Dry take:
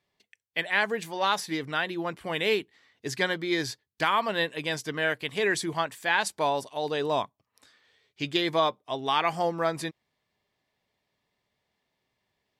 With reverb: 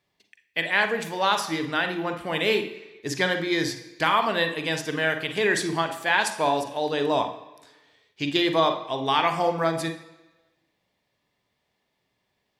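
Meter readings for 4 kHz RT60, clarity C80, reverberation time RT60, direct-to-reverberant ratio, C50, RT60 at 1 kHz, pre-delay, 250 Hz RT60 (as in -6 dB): 1.1 s, 13.0 dB, 1.1 s, 6.0 dB, 8.5 dB, 1.0 s, 39 ms, 1.0 s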